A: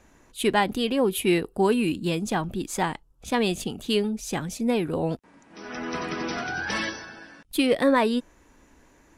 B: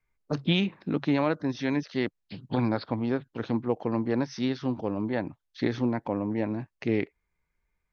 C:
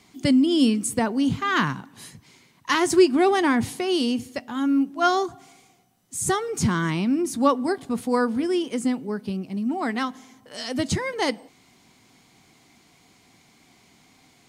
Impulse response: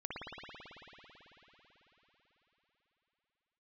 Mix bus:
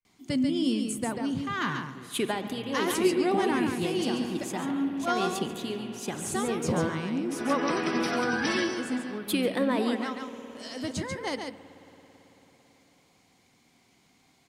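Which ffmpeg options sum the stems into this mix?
-filter_complex "[0:a]highpass=140,alimiter=limit=-19dB:level=0:latency=1:release=457,acrossover=split=490|3000[a][b][c];[b]acompressor=threshold=-30dB:ratio=6[d];[a][d][c]amix=inputs=3:normalize=0,adelay=1750,volume=0dB,asplit=3[e][f][g];[f]volume=-11dB[h];[g]volume=-15dB[i];[1:a]acrossover=split=190[j][k];[k]acompressor=threshold=-32dB:ratio=6[l];[j][l]amix=inputs=2:normalize=0,volume=-16dB,asplit=2[m][n];[2:a]adelay=50,volume=-9.5dB,asplit=3[o][p][q];[p]volume=-15dB[r];[q]volume=-4.5dB[s];[n]apad=whole_len=481906[t];[e][t]sidechaincompress=threshold=-52dB:ratio=8:attack=31:release=298[u];[3:a]atrim=start_sample=2205[v];[h][r]amix=inputs=2:normalize=0[w];[w][v]afir=irnorm=-1:irlink=0[x];[i][s]amix=inputs=2:normalize=0,aecho=0:1:140:1[y];[u][m][o][x][y]amix=inputs=5:normalize=0"

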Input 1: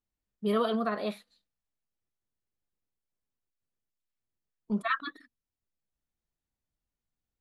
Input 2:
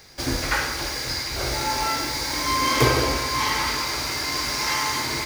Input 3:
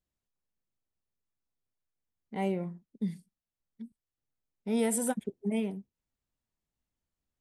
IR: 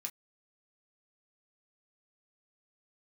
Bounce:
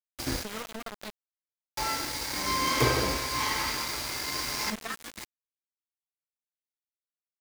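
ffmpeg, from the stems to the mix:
-filter_complex "[0:a]acompressor=threshold=-31dB:ratio=4,volume=-3.5dB,asplit=3[a][b][c];[b]volume=-4dB[d];[1:a]volume=-6dB,asplit=3[e][f][g];[e]atrim=end=0.69,asetpts=PTS-STARTPTS,afade=t=out:st=0.686:d=0.004:c=hsin[h];[f]atrim=start=0.69:end=1.77,asetpts=PTS-STARTPTS,volume=0[i];[g]atrim=start=1.77,asetpts=PTS-STARTPTS,afade=t=in:d=0.004:c=hsin[j];[h][i][j]concat=n=3:v=0:a=1,asplit=2[k][l];[l]volume=-17dB[m];[2:a]lowpass=f=7.2k:w=0.5412,lowpass=f=7.2k:w=1.3066,alimiter=level_in=3.5dB:limit=-24dB:level=0:latency=1:release=59,volume=-3.5dB,volume=-7dB[n];[c]apad=whole_len=231828[o];[k][o]sidechaincompress=threshold=-55dB:ratio=20:attack=29:release=154[p];[3:a]atrim=start_sample=2205[q];[d][m]amix=inputs=2:normalize=0[r];[r][q]afir=irnorm=-1:irlink=0[s];[a][p][n][s]amix=inputs=4:normalize=0,aeval=exprs='val(0)*gte(abs(val(0)),0.0266)':c=same"

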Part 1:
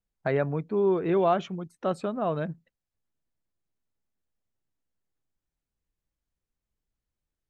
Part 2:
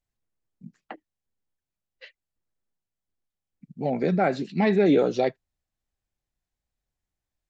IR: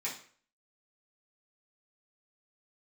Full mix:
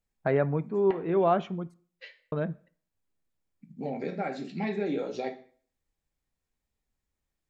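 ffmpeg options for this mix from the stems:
-filter_complex "[0:a]lowpass=f=1.9k:p=1,volume=1dB,asplit=3[a][b][c];[a]atrim=end=1.74,asetpts=PTS-STARTPTS,afade=t=out:st=1.736:d=0.004:c=hsin[d];[b]atrim=start=1.74:end=2.32,asetpts=PTS-STARTPTS,volume=0[e];[c]atrim=start=2.32,asetpts=PTS-STARTPTS,afade=t=in:d=0.004:c=hsin[f];[d][e][f]concat=n=3:v=0:a=1,asplit=2[g][h];[h]volume=-17dB[i];[1:a]acompressor=threshold=-34dB:ratio=2,volume=-4dB,asplit=3[j][k][l];[k]volume=-3.5dB[m];[l]apad=whole_len=330672[n];[g][n]sidechaincompress=threshold=-45dB:ratio=8:attack=7.7:release=529[o];[2:a]atrim=start_sample=2205[p];[i][m]amix=inputs=2:normalize=0[q];[q][p]afir=irnorm=-1:irlink=0[r];[o][j][r]amix=inputs=3:normalize=0"

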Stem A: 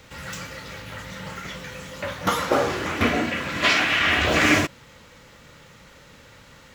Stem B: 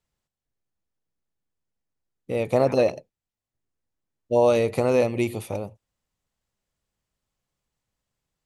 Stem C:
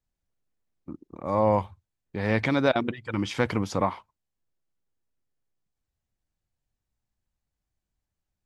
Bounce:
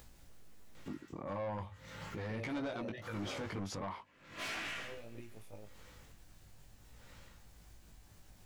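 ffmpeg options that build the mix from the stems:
-filter_complex "[0:a]asoftclip=type=tanh:threshold=-22dB,aeval=exprs='val(0)*pow(10,-33*(0.5-0.5*cos(2*PI*0.78*n/s))/20)':c=same,adelay=750,volume=-7.5dB[a];[1:a]acompressor=threshold=-29dB:ratio=2.5,alimiter=limit=-22.5dB:level=0:latency=1,volume=-3dB[b];[2:a]alimiter=limit=-16.5dB:level=0:latency=1:release=38,acompressor=mode=upward:threshold=-36dB:ratio=2.5,volume=2.5dB,asplit=2[c][d];[d]apad=whole_len=372959[e];[b][e]sidechaingate=range=-33dB:threshold=-50dB:ratio=16:detection=peak[f];[a][f][c]amix=inputs=3:normalize=0,flanger=delay=17.5:depth=2.9:speed=0.4,asoftclip=type=tanh:threshold=-25dB,alimiter=level_in=10.5dB:limit=-24dB:level=0:latency=1:release=238,volume=-10.5dB"

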